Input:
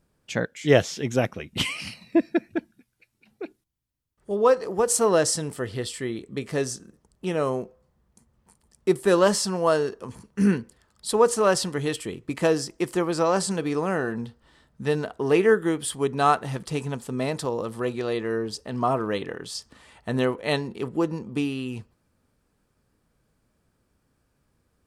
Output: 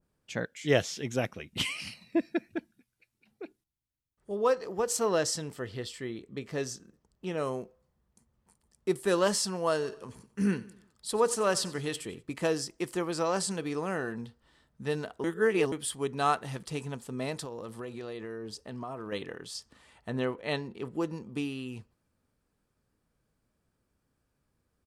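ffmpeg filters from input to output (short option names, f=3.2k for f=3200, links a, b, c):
-filter_complex "[0:a]asettb=1/sr,asplit=3[a][b][c];[a]atrim=end=4.534[d];[b]atrim=start=4.53:end=7.38,asetpts=PTS-STARTPTS,afade=t=in:d=0.004:c=qsin,afade=t=out:st=2.846:d=0.004:c=qsin,equalizer=f=9.6k:w=2:g=-10[e];[c]atrim=start=7.376[f];[d][e]acrossfade=d=0.004:c1=hsin:c2=qsin[g];[g][f]acrossfade=d=0.004:c1=qsin:c2=hsin,asplit=3[h][i][j];[h]afade=t=out:st=9.81:d=0.02[k];[i]aecho=1:1:91|182|273|364:0.112|0.0516|0.0237|0.0109,afade=t=in:st=9.81:d=0.02,afade=t=out:st=12.21:d=0.02[l];[j]afade=t=in:st=12.21:d=0.02[m];[k][l][m]amix=inputs=3:normalize=0,asettb=1/sr,asplit=3[n][o][p];[n]atrim=end=17.344[q];[o]atrim=start=17.34:end=19.12,asetpts=PTS-STARTPTS,afade=t=in:d=0.004:c=qsin,afade=t=out:st=1.776:d=0.004:c=qsin,acompressor=threshold=-28dB:ratio=6:attack=3.2:release=140:knee=1:detection=peak[r];[p]atrim=start=19.116[s];[q][r]acrossfade=d=0.004:c1=hsin:c2=qsin[t];[t][s]acrossfade=d=0.004:c1=qsin:c2=hsin,asettb=1/sr,asplit=3[u][v][w];[u]atrim=end=20.104[x];[v]atrim=start=20.1:end=20.85,asetpts=PTS-STARTPTS,afade=t=in:d=0.004:c=qsin,afade=t=out:st=0.746:d=0.004:c=qsin,lowpass=f=3.4k:p=1[y];[w]atrim=start=20.846[z];[x][y]acrossfade=d=0.004:c1=hsin:c2=qsin[aa];[aa][z]acrossfade=d=0.004:c1=qsin:c2=hsin,asplit=3[ab][ac][ad];[ab]atrim=end=15.242[ae];[ac]atrim=start=15.238:end=15.722,asetpts=PTS-STARTPTS,areverse[af];[ad]atrim=start=15.718[ag];[ae][af]acrossfade=d=0.004:c1=hsin:c2=hsin[ah];[ah][ag]acrossfade=d=0.004:c1=hsin:c2=hsin,adynamicequalizer=threshold=0.0224:dfrequency=1700:dqfactor=0.7:tfrequency=1700:tqfactor=0.7:attack=5:release=100:ratio=0.375:range=2:mode=boostabove:tftype=highshelf,volume=-7.5dB"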